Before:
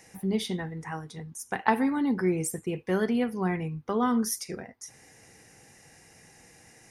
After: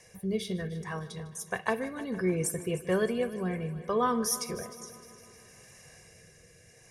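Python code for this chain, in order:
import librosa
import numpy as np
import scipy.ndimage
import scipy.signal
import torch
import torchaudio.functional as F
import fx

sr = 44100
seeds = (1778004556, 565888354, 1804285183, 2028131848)

y = x + 0.71 * np.pad(x, (int(1.8 * sr / 1000.0), 0))[:len(x)]
y = fx.rotary(y, sr, hz=0.65)
y = fx.echo_heads(y, sr, ms=153, heads='first and second', feedback_pct=57, wet_db=-18.5)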